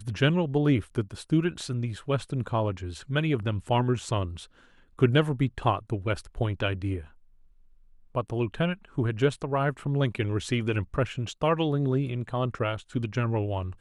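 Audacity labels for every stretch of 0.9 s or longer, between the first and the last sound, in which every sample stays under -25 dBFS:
6.950000	8.160000	silence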